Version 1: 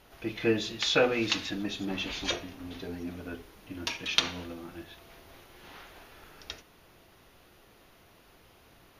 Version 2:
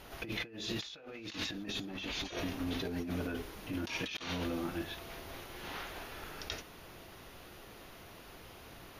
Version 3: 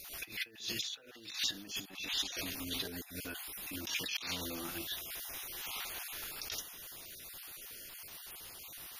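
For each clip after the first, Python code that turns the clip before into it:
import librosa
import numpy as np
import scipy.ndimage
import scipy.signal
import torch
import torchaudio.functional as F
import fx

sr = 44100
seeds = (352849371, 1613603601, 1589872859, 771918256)

y1 = fx.over_compress(x, sr, threshold_db=-41.0, ratio=-1.0)
y2 = fx.spec_dropout(y1, sr, seeds[0], share_pct=25)
y2 = librosa.effects.preemphasis(y2, coef=0.9, zi=[0.0])
y2 = fx.attack_slew(y2, sr, db_per_s=140.0)
y2 = y2 * 10.0 ** (12.0 / 20.0)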